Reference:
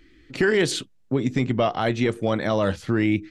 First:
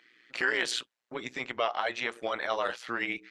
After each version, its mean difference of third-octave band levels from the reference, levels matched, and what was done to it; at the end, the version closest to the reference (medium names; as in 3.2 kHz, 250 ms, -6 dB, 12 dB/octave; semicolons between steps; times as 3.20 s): 7.0 dB: high-pass 920 Hz 12 dB/octave; treble shelf 5.7 kHz -12 dB; in parallel at -1.5 dB: peak limiter -26 dBFS, peak gain reduction 11 dB; on the sum: AM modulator 120 Hz, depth 65%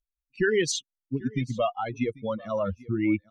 10.5 dB: expander on every frequency bin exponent 3; low-pass 8 kHz; peaking EQ 6.2 kHz +10.5 dB 0.29 oct; delay 792 ms -21.5 dB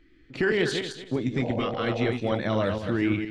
5.0 dB: backward echo that repeats 116 ms, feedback 46%, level -5 dB; dynamic bell 3.5 kHz, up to +5 dB, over -42 dBFS, Q 0.93; spectral replace 1.44–2.01 s, 470–980 Hz after; treble shelf 4.7 kHz -12 dB; trim -4.5 dB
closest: third